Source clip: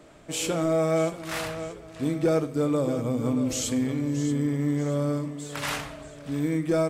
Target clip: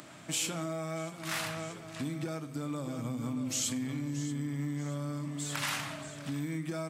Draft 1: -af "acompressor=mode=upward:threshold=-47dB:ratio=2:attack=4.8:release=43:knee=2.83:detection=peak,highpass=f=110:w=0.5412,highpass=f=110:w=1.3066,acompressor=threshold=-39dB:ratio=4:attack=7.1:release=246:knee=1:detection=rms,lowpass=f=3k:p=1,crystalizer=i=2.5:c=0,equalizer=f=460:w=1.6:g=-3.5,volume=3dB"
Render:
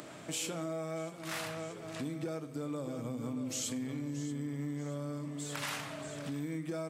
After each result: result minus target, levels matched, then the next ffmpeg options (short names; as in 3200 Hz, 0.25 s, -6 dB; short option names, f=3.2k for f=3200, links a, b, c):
compressor: peak gain reduction +5 dB; 500 Hz band +4.0 dB
-af "acompressor=mode=upward:threshold=-47dB:ratio=2:attack=4.8:release=43:knee=2.83:detection=peak,highpass=f=110:w=0.5412,highpass=f=110:w=1.3066,acompressor=threshold=-32.5dB:ratio=4:attack=7.1:release=246:knee=1:detection=rms,lowpass=f=3k:p=1,crystalizer=i=2.5:c=0,equalizer=f=460:w=1.6:g=-3.5,volume=3dB"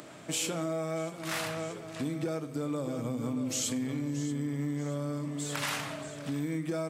500 Hz band +4.0 dB
-af "acompressor=mode=upward:threshold=-47dB:ratio=2:attack=4.8:release=43:knee=2.83:detection=peak,highpass=f=110:w=0.5412,highpass=f=110:w=1.3066,acompressor=threshold=-32.5dB:ratio=4:attack=7.1:release=246:knee=1:detection=rms,lowpass=f=3k:p=1,crystalizer=i=2.5:c=0,equalizer=f=460:w=1.6:g=-12.5,volume=3dB"